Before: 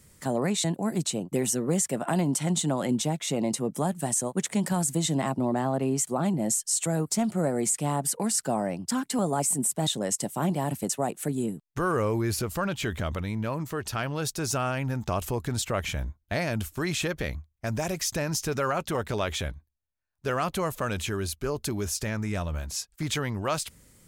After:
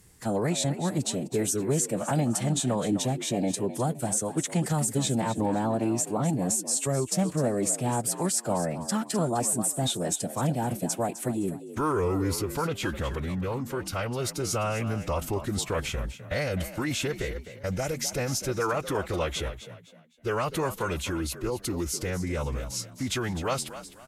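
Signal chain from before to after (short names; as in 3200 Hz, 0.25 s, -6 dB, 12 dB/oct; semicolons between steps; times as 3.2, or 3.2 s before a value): frequency-shifting echo 0.256 s, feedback 31%, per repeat +63 Hz, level -13 dB; formant-preserving pitch shift -3 st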